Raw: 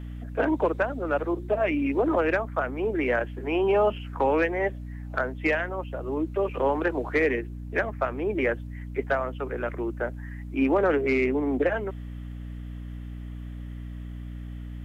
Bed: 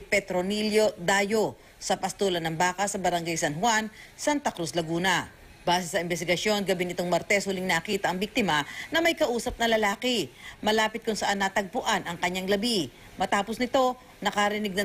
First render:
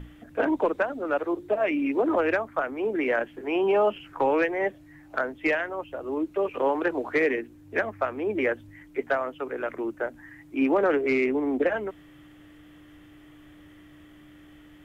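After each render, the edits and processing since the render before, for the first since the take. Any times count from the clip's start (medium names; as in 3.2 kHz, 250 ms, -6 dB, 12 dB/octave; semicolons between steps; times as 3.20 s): hum notches 60/120/180/240 Hz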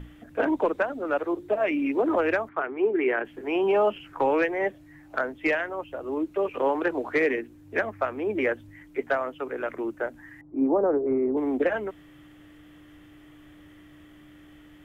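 2.49–3.25 s: cabinet simulation 120–3100 Hz, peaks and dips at 190 Hz -7 dB, 270 Hz -4 dB, 390 Hz +9 dB, 550 Hz -9 dB; 10.41–11.37 s: low-pass 1 kHz 24 dB/octave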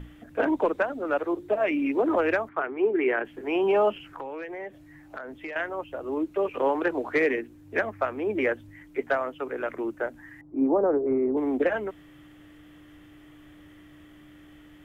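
4.00–5.56 s: compression, threshold -34 dBFS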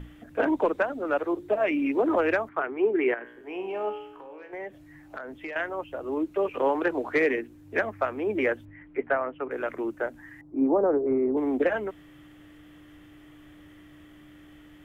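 3.14–4.53 s: feedback comb 60 Hz, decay 0.77 s, mix 80%; 8.65–9.51 s: low-pass 2.5 kHz 24 dB/octave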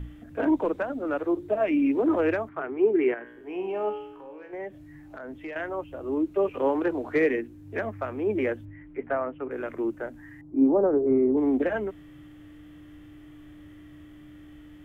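bass shelf 270 Hz +8 dB; harmonic-percussive split percussive -7 dB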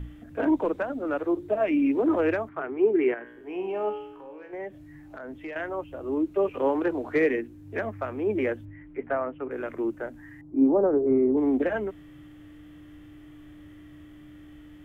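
no audible change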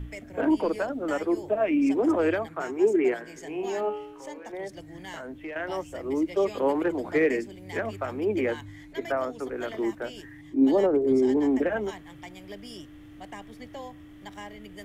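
add bed -17.5 dB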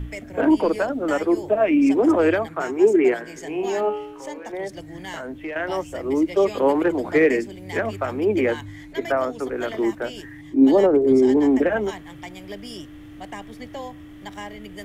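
trim +6 dB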